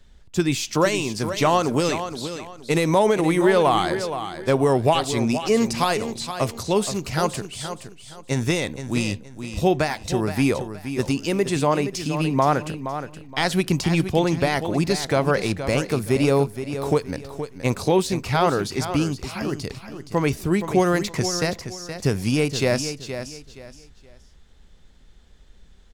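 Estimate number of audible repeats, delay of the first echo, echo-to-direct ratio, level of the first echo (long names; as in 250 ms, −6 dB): 3, 471 ms, −9.5 dB, −10.0 dB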